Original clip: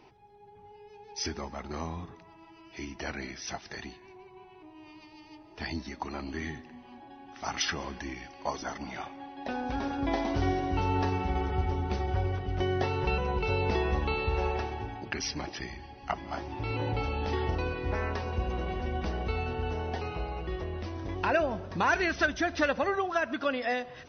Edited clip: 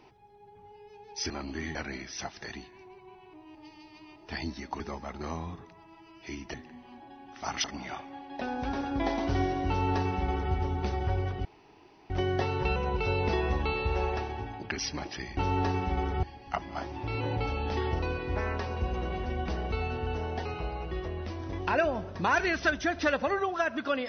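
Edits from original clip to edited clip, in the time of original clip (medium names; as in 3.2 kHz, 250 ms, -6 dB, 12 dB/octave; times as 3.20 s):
1.30–3.04 s: swap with 6.09–6.54 s
4.84–5.45 s: reverse
7.64–8.71 s: delete
10.75–11.61 s: copy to 15.79 s
12.52 s: insert room tone 0.65 s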